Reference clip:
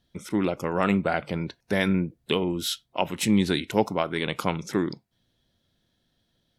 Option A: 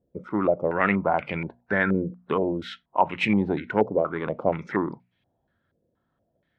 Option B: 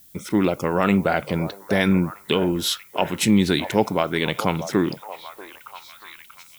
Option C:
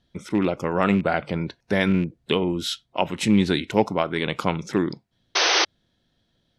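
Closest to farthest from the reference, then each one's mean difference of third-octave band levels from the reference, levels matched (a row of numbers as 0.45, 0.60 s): C, B, A; 1.0, 3.5, 6.5 dB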